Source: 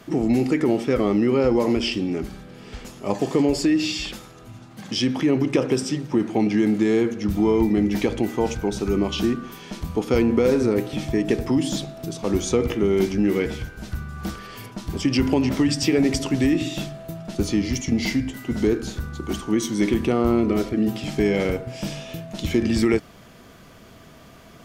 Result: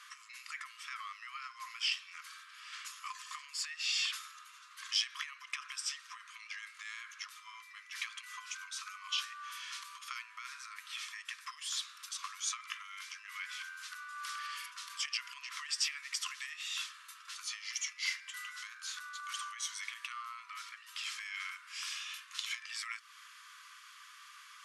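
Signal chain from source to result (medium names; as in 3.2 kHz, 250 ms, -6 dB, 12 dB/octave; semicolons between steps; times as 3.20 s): compression, threshold -25 dBFS, peak gain reduction 10.5 dB; brick-wall FIR band-pass 1–12 kHz; trim -1.5 dB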